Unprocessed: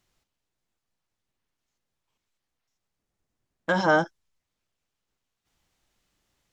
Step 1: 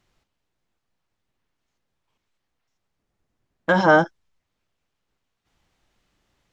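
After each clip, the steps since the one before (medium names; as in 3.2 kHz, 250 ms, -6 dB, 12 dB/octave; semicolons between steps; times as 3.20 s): treble shelf 5.7 kHz -11.5 dB; trim +6 dB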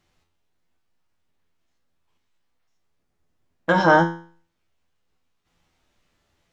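feedback comb 84 Hz, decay 0.45 s, harmonics all, mix 80%; trim +9 dB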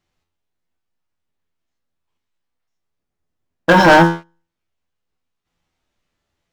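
waveshaping leveller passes 3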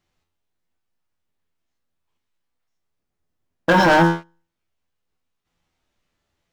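peak limiter -8.5 dBFS, peak gain reduction 6.5 dB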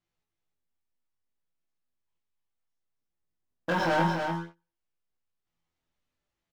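chorus 0.62 Hz, delay 17.5 ms, depth 7.3 ms; delay 290 ms -5.5 dB; trim -9 dB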